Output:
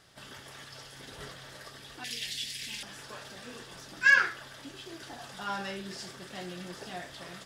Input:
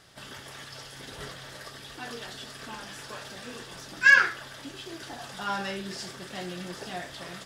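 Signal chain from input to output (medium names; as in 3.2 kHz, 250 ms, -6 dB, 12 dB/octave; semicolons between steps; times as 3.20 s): 2.04–2.83 s: FFT filter 150 Hz 0 dB, 1.3 kHz -17 dB, 2.1 kHz +11 dB; trim -4 dB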